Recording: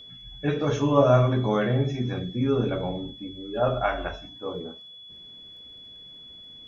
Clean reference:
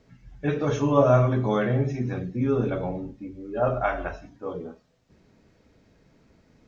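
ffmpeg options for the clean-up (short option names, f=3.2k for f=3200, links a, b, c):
-af "adeclick=t=4,bandreject=f=3.4k:w=30"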